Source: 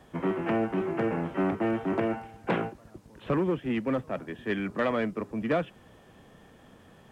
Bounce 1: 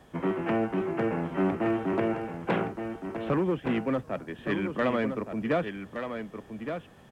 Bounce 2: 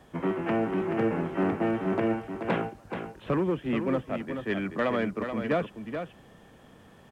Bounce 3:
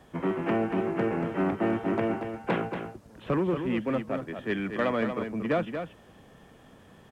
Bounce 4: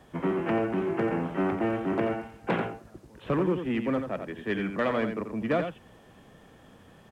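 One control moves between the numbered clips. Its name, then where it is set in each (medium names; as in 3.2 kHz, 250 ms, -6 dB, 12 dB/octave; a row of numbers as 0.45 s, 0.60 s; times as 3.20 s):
delay, time: 1169 ms, 430 ms, 233 ms, 87 ms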